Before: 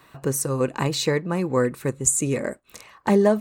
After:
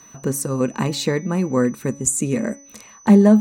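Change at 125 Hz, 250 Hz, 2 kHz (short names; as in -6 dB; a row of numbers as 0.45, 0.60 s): +4.0, +8.5, 0.0 dB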